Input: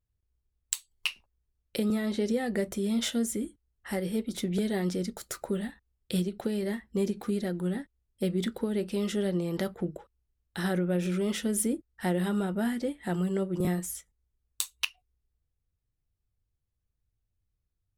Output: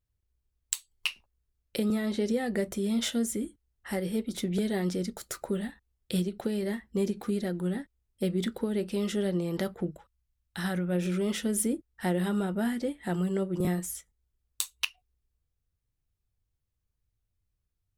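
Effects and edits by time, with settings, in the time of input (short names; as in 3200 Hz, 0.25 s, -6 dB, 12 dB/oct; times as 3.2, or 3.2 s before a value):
9.91–10.91 bell 410 Hz -15 dB -> -6 dB 1.1 oct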